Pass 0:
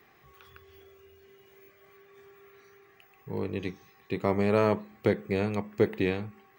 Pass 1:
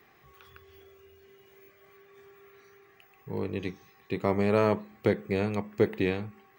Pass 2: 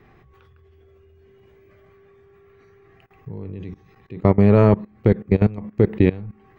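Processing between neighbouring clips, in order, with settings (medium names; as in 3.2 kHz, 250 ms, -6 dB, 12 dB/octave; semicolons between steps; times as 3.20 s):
no audible change
RIAA curve playback; level held to a coarse grid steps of 20 dB; trim +7.5 dB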